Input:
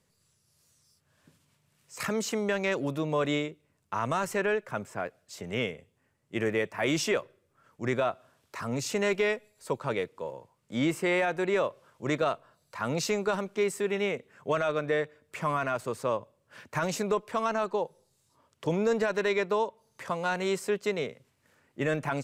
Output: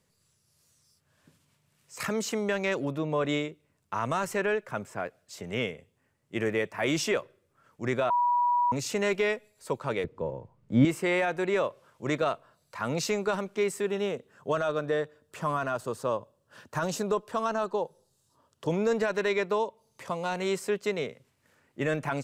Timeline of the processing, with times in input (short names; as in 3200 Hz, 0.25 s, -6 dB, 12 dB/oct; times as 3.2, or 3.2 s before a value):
2.85–3.29 high shelf 3900 Hz -8.5 dB
8.1–8.72 bleep 970 Hz -21.5 dBFS
10.04–10.85 tilt -4 dB/oct
13.86–18.69 bell 2200 Hz -12 dB 0.34 oct
19.58–20.37 bell 1600 Hz -7 dB 0.65 oct